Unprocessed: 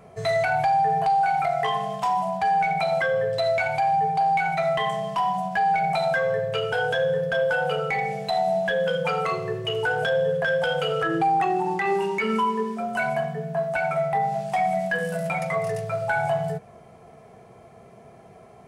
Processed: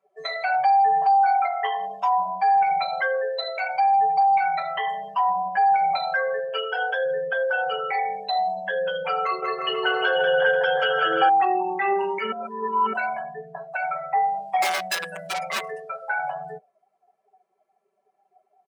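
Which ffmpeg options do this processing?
-filter_complex "[0:a]asettb=1/sr,asplit=3[a][b][c];[a]atrim=end=9.234[d];[b]atrim=start=9.23:end=11.29,asetpts=PTS-STARTPTS,afade=t=in:d=0.004:c=qsin,afade=t=out:st=2.056:d=0.004:c=qsin,aecho=1:1:190|351.5|488.8|605.5|704.6|788.9:0.794|0.631|0.501|0.398|0.316|0.251,atrim=end_sample=90846[e];[c]atrim=start=11.286[f];[d][e]acrossfade=d=0.004:c1=hsin:c2=qsin[g];[g][f]acrossfade=d=0.004:c1=qsin:c2=hsin,asettb=1/sr,asplit=3[h][i][j];[h]atrim=end=14.624[k];[i]atrim=start=14.62:end=15.63,asetpts=PTS-STARTPTS,afade=t=in:d=0.004:c=qsin,afade=t=out:st=1.006:d=0.004:c=qsin,aeval=exprs='(mod(8.41*val(0)+1,2)-1)/8.41':c=same[l];[j]atrim=start=15.626[m];[k][l]acrossfade=d=0.004:c1=hsin:c2=qsin[n];[n][m]acrossfade=d=0.004:c1=qsin:c2=hsin,asplit=3[o][p][q];[o]atrim=end=12.322[r];[p]atrim=start=12.318:end=12.932,asetpts=PTS-STARTPTS,areverse[s];[q]atrim=start=12.928[t];[r][s]acrossfade=d=0.004:c1=hsin:c2=hsin[u];[u][t]acrossfade=d=0.004:c1=hsin:c2=hsin,highpass=450,aecho=1:1:5.2:0.97,afftdn=nr=26:nf=-33,volume=-2dB"

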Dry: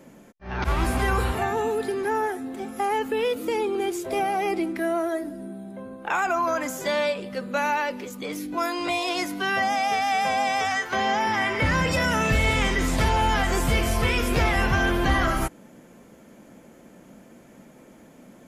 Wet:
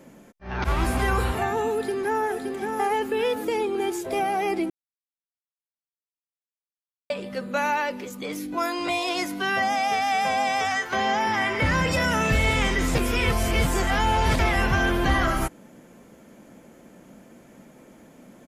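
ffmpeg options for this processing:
-filter_complex "[0:a]asplit=2[a][b];[b]afade=t=in:st=1.73:d=0.01,afade=t=out:st=2.3:d=0.01,aecho=0:1:570|1140|1710|2280|2850|3420:0.562341|0.281171|0.140585|0.0702927|0.0351463|0.0175732[c];[a][c]amix=inputs=2:normalize=0,asplit=5[d][e][f][g][h];[d]atrim=end=4.7,asetpts=PTS-STARTPTS,afade=t=out:st=4.696:d=0.004:c=hsin[i];[e]atrim=start=4.7:end=7.1,asetpts=PTS-STARTPTS,volume=0[j];[f]atrim=start=7.1:end=12.952,asetpts=PTS-STARTPTS,afade=t=in:d=0.004:c=hsin[k];[g]atrim=start=12.948:end=14.392,asetpts=PTS-STARTPTS,areverse[l];[h]atrim=start=14.388[m];[i][j][k]concat=n=3:v=0:a=1[n];[n][l]acrossfade=d=0.004:c1=hsin:c2=hsin[o];[o][m]acrossfade=d=0.004:c1=hsin:c2=hsin"

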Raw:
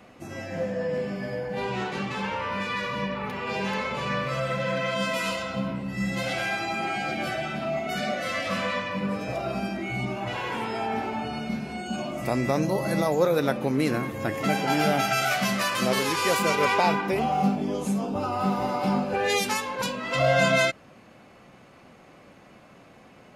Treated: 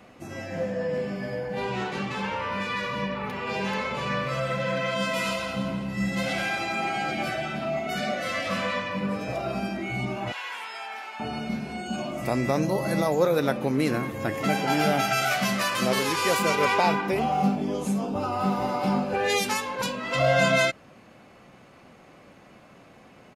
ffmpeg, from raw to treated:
-filter_complex "[0:a]asplit=3[a][b][c];[a]afade=t=out:st=5.16:d=0.02[d];[b]aecho=1:1:171|342|513|684|855:0.316|0.152|0.0729|0.035|0.0168,afade=t=in:st=5.16:d=0.02,afade=t=out:st=7.32:d=0.02[e];[c]afade=t=in:st=7.32:d=0.02[f];[d][e][f]amix=inputs=3:normalize=0,asettb=1/sr,asplit=3[g][h][i];[g]atrim=end=10.324[j];[h]atrim=start=10.32:end=11.2,asetpts=PTS-STARTPTS,afade=t=in:d=0.004:c=qsin,afade=t=out:st=0.876:d=0.004:c=qsin,highpass=1.3k[k];[i]atrim=start=11.196[l];[j][k]acrossfade=d=0.004:c1=hsin:c2=qsin[m];[m][l]acrossfade=d=0.004:c1=qsin:c2=hsin"

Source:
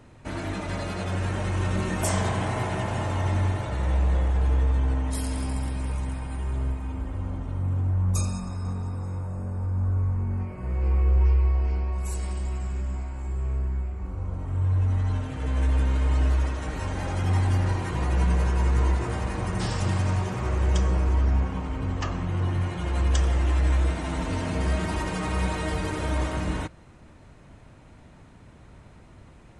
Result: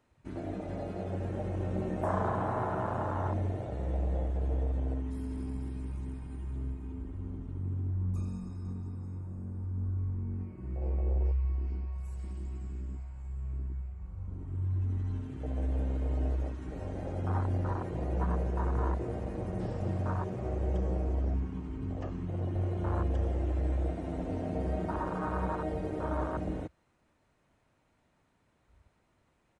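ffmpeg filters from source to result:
-filter_complex "[0:a]asplit=2[a][b];[b]afade=t=in:st=22.26:d=0.01,afade=t=out:st=22.73:d=0.01,aecho=0:1:290|580|870|1160|1450|1740|2030|2320|2610:0.707946|0.424767|0.25486|0.152916|0.0917498|0.0550499|0.0330299|0.019818|0.0118908[c];[a][c]amix=inputs=2:normalize=0,acrossover=split=2500[d][e];[e]acompressor=threshold=-47dB:ratio=4:attack=1:release=60[f];[d][f]amix=inputs=2:normalize=0,afwtdn=0.0398,lowshelf=f=230:g=-10"

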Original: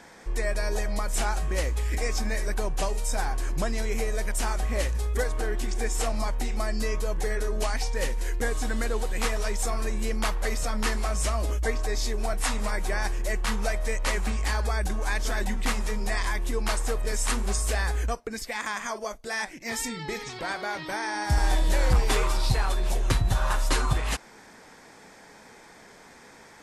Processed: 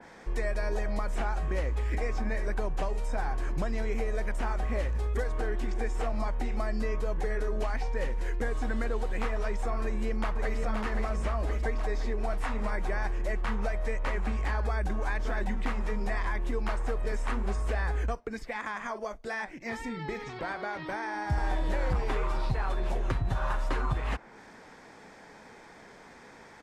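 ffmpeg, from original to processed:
-filter_complex "[0:a]asplit=2[a][b];[b]afade=t=in:st=9.83:d=0.01,afade=t=out:st=10.57:d=0.01,aecho=0:1:520|1040|1560|2080|2600|3120|3640|4160:0.562341|0.337405|0.202443|0.121466|0.0728794|0.0437277|0.0262366|0.015742[c];[a][c]amix=inputs=2:normalize=0,aemphasis=mode=reproduction:type=50kf,acrossover=split=110|2800[d][e][f];[d]acompressor=threshold=-28dB:ratio=4[g];[e]acompressor=threshold=-31dB:ratio=4[h];[f]acompressor=threshold=-49dB:ratio=4[i];[g][h][i]amix=inputs=3:normalize=0,adynamicequalizer=threshold=0.00282:dfrequency=2800:dqfactor=0.7:tfrequency=2800:tqfactor=0.7:attack=5:release=100:ratio=0.375:range=2.5:mode=cutabove:tftype=highshelf"

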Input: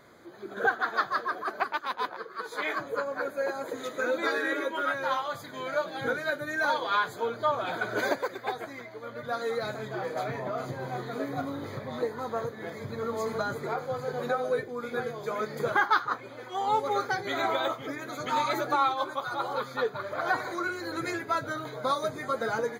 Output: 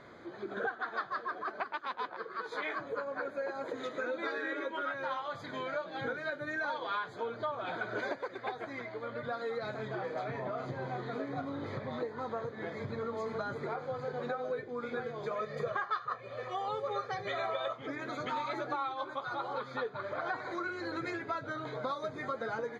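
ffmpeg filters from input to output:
-filter_complex "[0:a]asettb=1/sr,asplit=3[a][b][c];[a]atrim=end=8.904[d];[b]atrim=start=8.9:end=9.54,asetpts=PTS-STARTPTS,afade=t=in:d=0.004:c=qsin,afade=t=out:st=0.636:d=0.004:c=qsin,bandreject=f=6k:w=12[e];[c]atrim=start=9.536[f];[d][e]acrossfade=d=0.004:c1=hsin:c2=qsin[g];[g][f]acrossfade=d=0.004:c1=qsin:c2=hsin,asettb=1/sr,asplit=3[h][i][j];[h]atrim=end=15.314[k];[i]atrim=start=15.31:end=17.73,asetpts=PTS-STARTPTS,afade=t=in:d=0.004:c=qsin,afade=t=out:st=2.416:d=0.004:c=qsin,aecho=1:1:1.7:0.83,atrim=end_sample=106722[l];[j]atrim=start=17.726[m];[k][l]acrossfade=d=0.004:c1=hsin:c2=qsin[n];[n][m]acrossfade=d=0.004:c1=qsin:c2=hsin,lowpass=4k,acompressor=threshold=-39dB:ratio=3,volume=2.5dB"

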